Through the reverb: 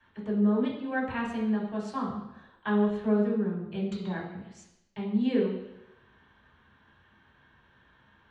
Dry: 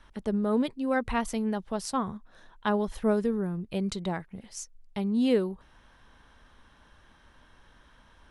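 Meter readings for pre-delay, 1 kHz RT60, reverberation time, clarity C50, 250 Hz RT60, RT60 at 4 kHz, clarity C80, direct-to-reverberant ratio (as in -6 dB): 3 ms, 0.90 s, 0.90 s, 4.5 dB, 0.90 s, 0.90 s, 7.0 dB, -8.5 dB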